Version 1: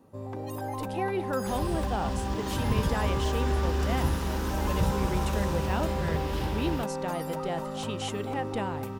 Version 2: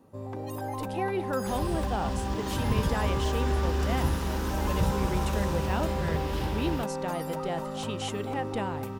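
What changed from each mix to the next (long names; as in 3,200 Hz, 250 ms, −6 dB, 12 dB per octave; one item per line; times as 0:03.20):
nothing changed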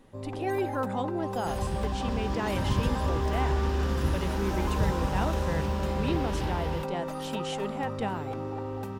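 speech: entry −0.55 s
master: add high-shelf EQ 8,100 Hz −8 dB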